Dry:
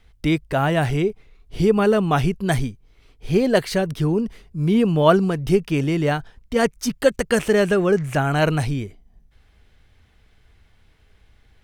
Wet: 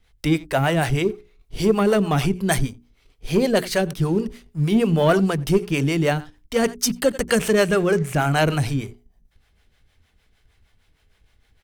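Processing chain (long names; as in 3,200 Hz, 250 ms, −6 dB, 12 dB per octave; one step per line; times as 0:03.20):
slap from a distant wall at 15 metres, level −22 dB
two-band tremolo in antiphase 6.5 Hz, depth 70%, crossover 430 Hz
leveller curve on the samples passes 1
high-shelf EQ 4,200 Hz +6.5 dB
mains-hum notches 60/120/180/240/300/360/420 Hz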